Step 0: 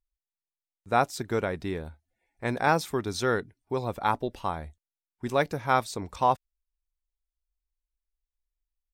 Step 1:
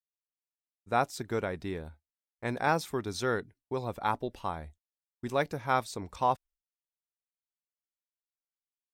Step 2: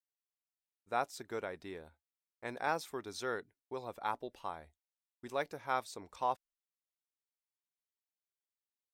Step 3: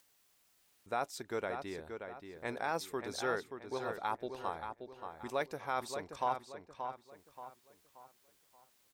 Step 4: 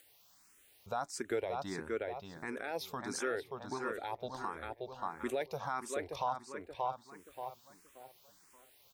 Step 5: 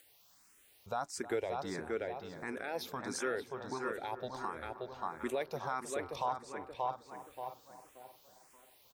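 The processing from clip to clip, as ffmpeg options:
ffmpeg -i in.wav -af "agate=range=-33dB:threshold=-46dB:ratio=3:detection=peak,volume=-4dB" out.wav
ffmpeg -i in.wav -af "bass=frequency=250:gain=-11,treble=frequency=4000:gain=0,volume=-6.5dB" out.wav
ffmpeg -i in.wav -filter_complex "[0:a]alimiter=level_in=1dB:limit=-24dB:level=0:latency=1:release=22,volume=-1dB,acompressor=mode=upward:threshold=-55dB:ratio=2.5,asplit=2[link_01][link_02];[link_02]adelay=579,lowpass=frequency=4000:poles=1,volume=-7dB,asplit=2[link_03][link_04];[link_04]adelay=579,lowpass=frequency=4000:poles=1,volume=0.39,asplit=2[link_05][link_06];[link_06]adelay=579,lowpass=frequency=4000:poles=1,volume=0.39,asplit=2[link_07][link_08];[link_08]adelay=579,lowpass=frequency=4000:poles=1,volume=0.39,asplit=2[link_09][link_10];[link_10]adelay=579,lowpass=frequency=4000:poles=1,volume=0.39[link_11];[link_01][link_03][link_05][link_07][link_09][link_11]amix=inputs=6:normalize=0,volume=2.5dB" out.wav
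ffmpeg -i in.wav -filter_complex "[0:a]alimiter=level_in=8dB:limit=-24dB:level=0:latency=1:release=279,volume=-8dB,asplit=2[link_01][link_02];[link_02]afreqshift=1.5[link_03];[link_01][link_03]amix=inputs=2:normalize=1,volume=9dB" out.wav
ffmpeg -i in.wav -filter_complex "[0:a]asplit=2[link_01][link_02];[link_02]adelay=314,lowpass=frequency=2100:poles=1,volume=-14dB,asplit=2[link_03][link_04];[link_04]adelay=314,lowpass=frequency=2100:poles=1,volume=0.55,asplit=2[link_05][link_06];[link_06]adelay=314,lowpass=frequency=2100:poles=1,volume=0.55,asplit=2[link_07][link_08];[link_08]adelay=314,lowpass=frequency=2100:poles=1,volume=0.55,asplit=2[link_09][link_10];[link_10]adelay=314,lowpass=frequency=2100:poles=1,volume=0.55,asplit=2[link_11][link_12];[link_12]adelay=314,lowpass=frequency=2100:poles=1,volume=0.55[link_13];[link_01][link_03][link_05][link_07][link_09][link_11][link_13]amix=inputs=7:normalize=0" out.wav

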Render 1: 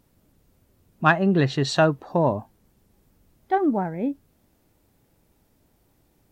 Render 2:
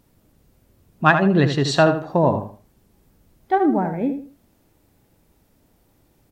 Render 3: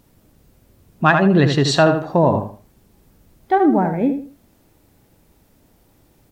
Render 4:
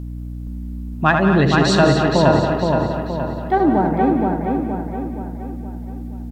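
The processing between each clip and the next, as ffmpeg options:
ffmpeg -i in.wav -filter_complex "[0:a]asplit=2[link_01][link_02];[link_02]adelay=79,lowpass=frequency=3900:poles=1,volume=-8dB,asplit=2[link_03][link_04];[link_04]adelay=79,lowpass=frequency=3900:poles=1,volume=0.28,asplit=2[link_05][link_06];[link_06]adelay=79,lowpass=frequency=3900:poles=1,volume=0.28[link_07];[link_01][link_03][link_05][link_07]amix=inputs=4:normalize=0,volume=3dB" out.wav
ffmpeg -i in.wav -filter_complex "[0:a]asplit=2[link_01][link_02];[link_02]alimiter=limit=-12dB:level=0:latency=1,volume=2.5dB[link_03];[link_01][link_03]amix=inputs=2:normalize=0,acrusher=bits=10:mix=0:aa=0.000001,volume=-3dB" out.wav
ffmpeg -i in.wav -filter_complex "[0:a]asplit=2[link_01][link_02];[link_02]aecho=0:1:180.8|236.2:0.316|0.316[link_03];[link_01][link_03]amix=inputs=2:normalize=0,aeval=exprs='val(0)+0.0501*(sin(2*PI*60*n/s)+sin(2*PI*2*60*n/s)/2+sin(2*PI*3*60*n/s)/3+sin(2*PI*4*60*n/s)/4+sin(2*PI*5*60*n/s)/5)':channel_layout=same,asplit=2[link_04][link_05];[link_05]adelay=471,lowpass=frequency=4900:poles=1,volume=-3.5dB,asplit=2[link_06][link_07];[link_07]adelay=471,lowpass=frequency=4900:poles=1,volume=0.49,asplit=2[link_08][link_09];[link_09]adelay=471,lowpass=frequency=4900:poles=1,volume=0.49,asplit=2[link_10][link_11];[link_11]adelay=471,lowpass=frequency=4900:poles=1,volume=0.49,asplit=2[link_12][link_13];[link_13]adelay=471,lowpass=frequency=4900:poles=1,volume=0.49,asplit=2[link_14][link_15];[link_15]adelay=471,lowpass=frequency=4900:poles=1,volume=0.49[link_16];[link_06][link_08][link_10][link_12][link_14][link_16]amix=inputs=6:normalize=0[link_17];[link_04][link_17]amix=inputs=2:normalize=0,volume=-1.5dB" out.wav

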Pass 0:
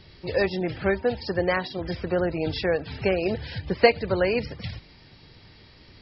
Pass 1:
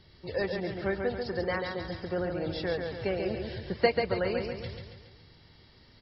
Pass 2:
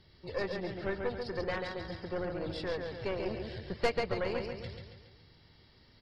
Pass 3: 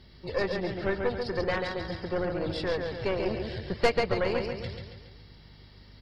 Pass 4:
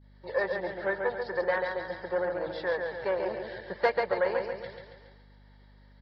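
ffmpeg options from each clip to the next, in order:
ffmpeg -i in.wav -af "bandreject=frequency=2500:width=6.9,aecho=1:1:139|278|417|556|695|834:0.562|0.281|0.141|0.0703|0.0351|0.0176,volume=-7.5dB" out.wav
ffmpeg -i in.wav -af "aeval=exprs='(tanh(12.6*val(0)+0.7)-tanh(0.7))/12.6':channel_layout=same" out.wav
ffmpeg -i in.wav -af "aeval=exprs='val(0)+0.00112*(sin(2*PI*50*n/s)+sin(2*PI*2*50*n/s)/2+sin(2*PI*3*50*n/s)/3+sin(2*PI*4*50*n/s)/4+sin(2*PI*5*50*n/s)/5)':channel_layout=same,volume=6dB" out.wav
ffmpeg -i in.wav -af "highpass=230,equalizer=frequency=260:width_type=q:width=4:gain=-10,equalizer=frequency=560:width_type=q:width=4:gain=8,equalizer=frequency=890:width_type=q:width=4:gain=9,equalizer=frequency=1700:width_type=q:width=4:gain=10,equalizer=frequency=2700:width_type=q:width=4:gain=-8,lowpass=frequency=4300:width=0.5412,lowpass=frequency=4300:width=1.3066,agate=range=-33dB:threshold=-51dB:ratio=3:detection=peak,aeval=exprs='val(0)+0.00316*(sin(2*PI*50*n/s)+sin(2*PI*2*50*n/s)/2+sin(2*PI*3*50*n/s)/3+sin(2*PI*4*50*n/s)/4+sin(2*PI*5*50*n/s)/5)':channel_layout=same,volume=-4.5dB" out.wav

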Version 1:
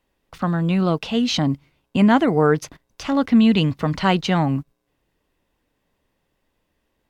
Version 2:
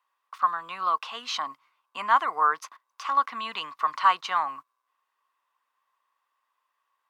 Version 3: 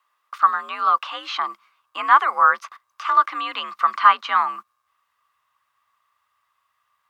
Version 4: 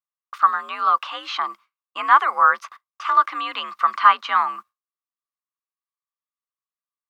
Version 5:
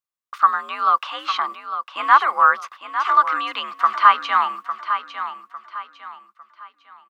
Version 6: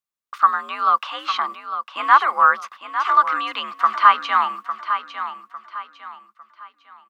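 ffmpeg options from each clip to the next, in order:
ffmpeg -i in.wav -af "highpass=frequency=1100:width_type=q:width=8.6,volume=-8.5dB" out.wav
ffmpeg -i in.wav -filter_complex "[0:a]afreqshift=66,asubboost=boost=9:cutoff=120,acrossover=split=3400[link_01][link_02];[link_02]acompressor=threshold=-54dB:ratio=4:attack=1:release=60[link_03];[link_01][link_03]amix=inputs=2:normalize=0,volume=7.5dB" out.wav
ffmpeg -i in.wav -af "agate=range=-33dB:threshold=-38dB:ratio=3:detection=peak" out.wav
ffmpeg -i in.wav -af "aecho=1:1:853|1706|2559|3412:0.316|0.108|0.0366|0.0124,volume=1dB" out.wav
ffmpeg -i in.wav -af "equalizer=frequency=220:width_type=o:width=0.31:gain=5" out.wav

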